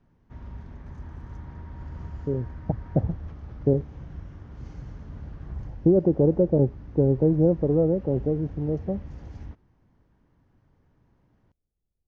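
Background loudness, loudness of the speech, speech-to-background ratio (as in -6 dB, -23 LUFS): -41.5 LUFS, -24.0 LUFS, 17.5 dB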